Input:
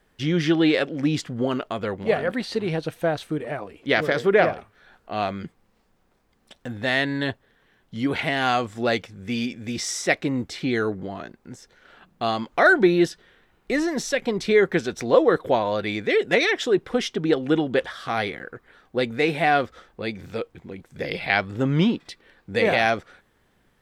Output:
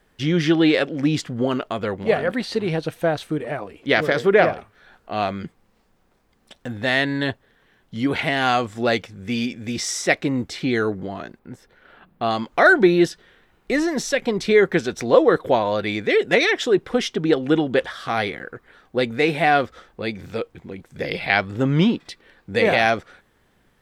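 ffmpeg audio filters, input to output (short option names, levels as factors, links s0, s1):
-filter_complex "[0:a]asettb=1/sr,asplit=3[s0][s1][s2];[s0]atrim=end=11.394[s3];[s1]atrim=start=11.39:end=12.31,asetpts=PTS-STARTPTS,afade=t=in:d=0.004:c=qsin,afade=t=out:st=0.916:d=0.004:c=qsin,equalizer=f=6400:w=0.96:g=-13[s4];[s2]atrim=start=12.306[s5];[s3][s4]acrossfade=d=0.004:c1=hsin:c2=qsin[s6];[s6][s5]acrossfade=d=0.004:c1=qsin:c2=hsin,volume=1.33"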